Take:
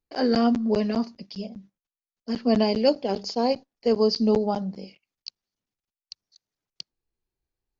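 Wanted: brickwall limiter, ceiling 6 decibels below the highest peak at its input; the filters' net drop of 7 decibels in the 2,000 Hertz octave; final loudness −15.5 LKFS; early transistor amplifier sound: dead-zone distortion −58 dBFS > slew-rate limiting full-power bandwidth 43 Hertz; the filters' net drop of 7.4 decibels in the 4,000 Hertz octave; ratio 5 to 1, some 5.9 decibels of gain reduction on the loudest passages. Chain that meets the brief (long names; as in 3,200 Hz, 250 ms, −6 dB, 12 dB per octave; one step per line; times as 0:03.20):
parametric band 2,000 Hz −7.5 dB
parametric band 4,000 Hz −8 dB
downward compressor 5 to 1, threshold −22 dBFS
brickwall limiter −20.5 dBFS
dead-zone distortion −58 dBFS
slew-rate limiting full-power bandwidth 43 Hz
level +15 dB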